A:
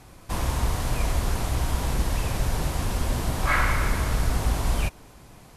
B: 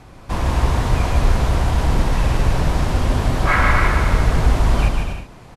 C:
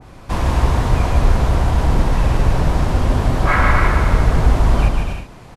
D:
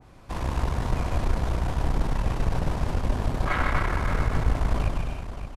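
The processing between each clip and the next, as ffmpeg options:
-filter_complex "[0:a]aemphasis=mode=reproduction:type=50fm,asplit=2[a][b];[b]aecho=0:1:150|247.5|310.9|352.1|378.8:0.631|0.398|0.251|0.158|0.1[c];[a][c]amix=inputs=2:normalize=0,volume=6dB"
-af "adynamicequalizer=threshold=0.0251:dfrequency=1600:dqfactor=0.7:tfrequency=1600:tqfactor=0.7:attack=5:release=100:ratio=0.375:range=2:mode=cutabove:tftype=highshelf,volume=2dB"
-filter_complex "[0:a]aeval=exprs='(tanh(2.24*val(0)+0.7)-tanh(0.7))/2.24':c=same,asplit=2[a][b];[b]aecho=0:1:573:0.299[c];[a][c]amix=inputs=2:normalize=0,volume=-7dB"

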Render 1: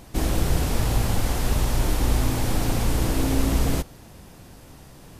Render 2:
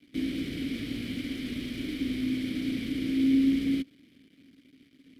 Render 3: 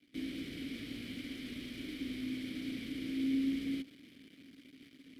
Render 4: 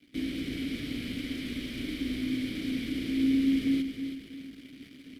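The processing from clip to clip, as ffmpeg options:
-filter_complex "[0:a]aexciter=amount=1.4:drive=3.2:freq=3.8k,acrusher=bits=6:dc=4:mix=0:aa=0.000001,asplit=3[a][b][c];[a]bandpass=f=270:t=q:w=8,volume=0dB[d];[b]bandpass=f=2.29k:t=q:w=8,volume=-6dB[e];[c]bandpass=f=3.01k:t=q:w=8,volume=-9dB[f];[d][e][f]amix=inputs=3:normalize=0,volume=5.5dB"
-af "lowshelf=f=340:g=-5,areverse,acompressor=mode=upward:threshold=-39dB:ratio=2.5,areverse,volume=-6.5dB"
-af "lowshelf=f=81:g=8,aecho=1:1:324|648|972|1296:0.376|0.139|0.0515|0.019,volume=6.5dB"

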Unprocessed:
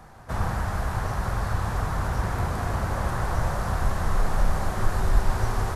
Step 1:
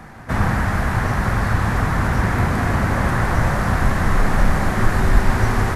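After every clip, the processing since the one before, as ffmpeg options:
-af "equalizer=f=125:t=o:w=1:g=3,equalizer=f=250:t=o:w=1:g=9,equalizer=f=2k:t=o:w=1:g=9,volume=5dB"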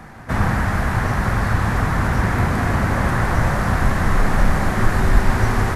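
-af anull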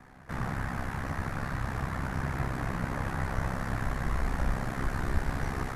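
-af "flanger=delay=8.5:depth=8.1:regen=51:speed=0.47:shape=sinusoidal,aeval=exprs='val(0)*sin(2*PI*33*n/s)':c=same,volume=-7dB"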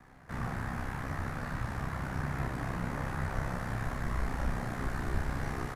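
-filter_complex "[0:a]acrossover=split=540|2200[a][b][c];[c]acrusher=bits=5:mode=log:mix=0:aa=0.000001[d];[a][b][d]amix=inputs=3:normalize=0,asplit=2[e][f];[f]adelay=34,volume=-5dB[g];[e][g]amix=inputs=2:normalize=0,volume=-4dB"

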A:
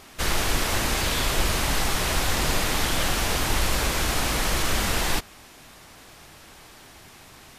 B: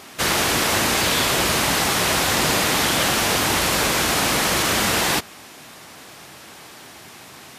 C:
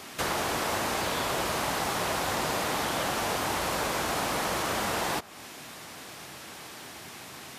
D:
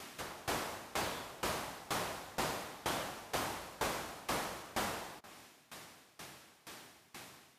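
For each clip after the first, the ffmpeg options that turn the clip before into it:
-af "highpass=130,volume=6.5dB"
-filter_complex "[0:a]acrossover=split=530|1200[a][b][c];[a]acompressor=threshold=-35dB:ratio=4[d];[b]acompressor=threshold=-28dB:ratio=4[e];[c]acompressor=threshold=-33dB:ratio=4[f];[d][e][f]amix=inputs=3:normalize=0,volume=-2dB"
-af "aeval=exprs='val(0)*pow(10,-22*if(lt(mod(2.1*n/s,1),2*abs(2.1)/1000),1-mod(2.1*n/s,1)/(2*abs(2.1)/1000),(mod(2.1*n/s,1)-2*abs(2.1)/1000)/(1-2*abs(2.1)/1000))/20)':c=same,volume=-3.5dB"

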